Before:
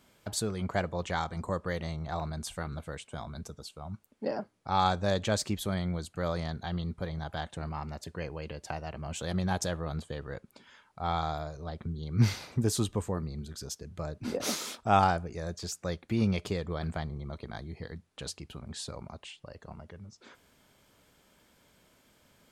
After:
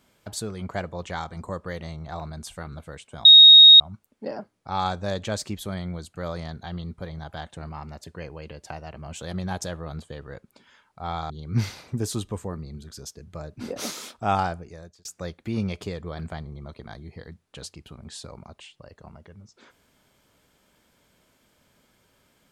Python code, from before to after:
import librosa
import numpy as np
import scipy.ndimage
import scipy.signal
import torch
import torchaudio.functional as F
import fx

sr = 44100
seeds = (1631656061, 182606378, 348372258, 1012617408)

y = fx.edit(x, sr, fx.bleep(start_s=3.25, length_s=0.55, hz=3750.0, db=-6.0),
    fx.cut(start_s=11.3, length_s=0.64),
    fx.fade_out_span(start_s=15.16, length_s=0.53), tone=tone)